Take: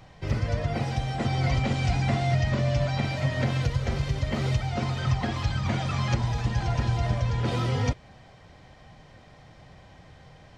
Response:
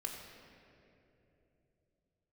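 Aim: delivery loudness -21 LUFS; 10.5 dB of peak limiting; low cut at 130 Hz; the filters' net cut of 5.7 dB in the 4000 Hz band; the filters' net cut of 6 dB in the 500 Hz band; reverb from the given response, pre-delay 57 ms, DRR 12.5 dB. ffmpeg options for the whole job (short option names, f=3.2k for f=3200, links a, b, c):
-filter_complex "[0:a]highpass=130,equalizer=f=500:t=o:g=-8,equalizer=f=4k:t=o:g=-7.5,alimiter=level_in=4dB:limit=-24dB:level=0:latency=1,volume=-4dB,asplit=2[a][b];[1:a]atrim=start_sample=2205,adelay=57[c];[b][c]afir=irnorm=-1:irlink=0,volume=-12dB[d];[a][d]amix=inputs=2:normalize=0,volume=15dB"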